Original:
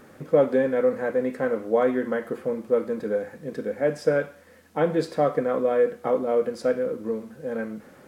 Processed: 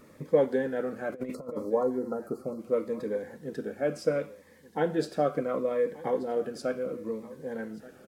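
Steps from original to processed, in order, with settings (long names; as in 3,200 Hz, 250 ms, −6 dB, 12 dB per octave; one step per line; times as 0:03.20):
harmonic and percussive parts rebalanced percussive +5 dB
0:01.12–0:01.70: compressor whose output falls as the input rises −28 dBFS, ratio −0.5
0:01.34–0:02.60: gain on a spectral selection 1,400–4,000 Hz −29 dB
single-tap delay 1,181 ms −19 dB
phaser whose notches keep moving one way falling 0.71 Hz
level −6 dB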